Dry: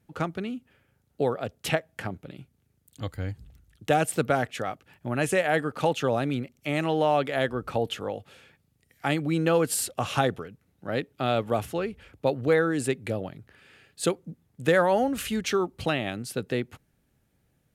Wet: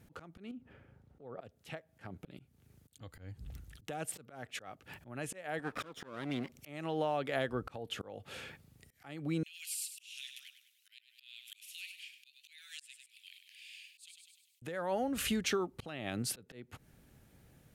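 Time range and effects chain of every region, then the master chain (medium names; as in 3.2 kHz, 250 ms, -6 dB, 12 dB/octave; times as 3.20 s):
0.51–1.41 s: low-pass 1 kHz 6 dB/octave + compression 3:1, threshold -40 dBFS
5.59–6.52 s: comb filter that takes the minimum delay 0.56 ms + high-pass 280 Hz 6 dB/octave + treble shelf 5.1 kHz -5 dB
9.43–14.62 s: steep high-pass 2.4 kHz 48 dB/octave + compression 4:1, threshold -48 dBFS + feedback delay 100 ms, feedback 46%, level -10.5 dB
whole clip: compression 6:1, threshold -39 dBFS; slow attack 346 ms; trim +7.5 dB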